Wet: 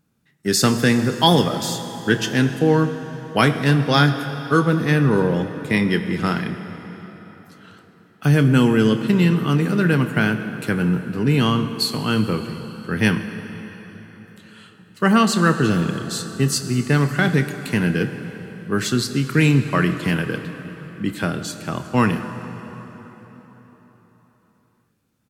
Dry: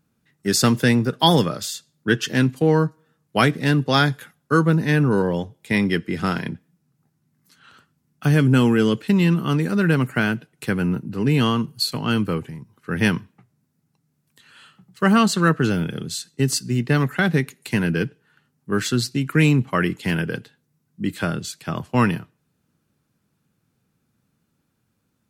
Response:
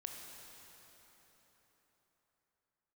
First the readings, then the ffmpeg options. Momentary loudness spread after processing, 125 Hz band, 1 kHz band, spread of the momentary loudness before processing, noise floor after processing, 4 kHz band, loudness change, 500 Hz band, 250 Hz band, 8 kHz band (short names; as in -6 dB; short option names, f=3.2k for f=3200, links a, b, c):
16 LU, +1.5 dB, +1.5 dB, 12 LU, -60 dBFS, +1.5 dB, +1.5 dB, +1.5 dB, +1.5 dB, +1.0 dB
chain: -filter_complex "[0:a]asplit=2[a][b];[b]adelay=28,volume=-14dB[c];[a][c]amix=inputs=2:normalize=0,asplit=2[d][e];[1:a]atrim=start_sample=2205[f];[e][f]afir=irnorm=-1:irlink=0,volume=2dB[g];[d][g]amix=inputs=2:normalize=0,volume=-4dB"